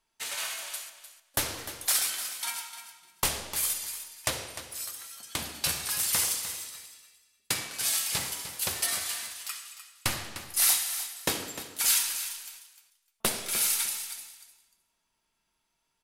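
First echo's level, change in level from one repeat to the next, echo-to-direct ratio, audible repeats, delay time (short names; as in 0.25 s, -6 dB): -12.0 dB, -15.0 dB, -12.0 dB, 2, 0.302 s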